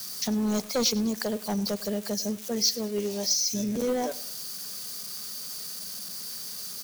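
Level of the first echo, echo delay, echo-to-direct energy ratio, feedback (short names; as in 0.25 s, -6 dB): -20.0 dB, 0.101 s, -19.5 dB, 38%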